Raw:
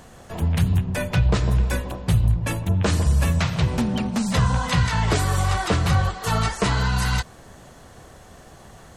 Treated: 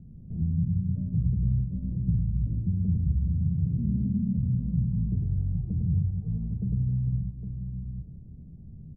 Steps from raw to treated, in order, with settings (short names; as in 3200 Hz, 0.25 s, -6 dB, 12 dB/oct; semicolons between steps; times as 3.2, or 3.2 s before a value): compressor 4:1, threshold -28 dBFS, peak gain reduction 12.5 dB; ladder low-pass 210 Hz, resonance 40%; tapped delay 0.104/0.269/0.811 s -4/-11.5/-7 dB; gain +8 dB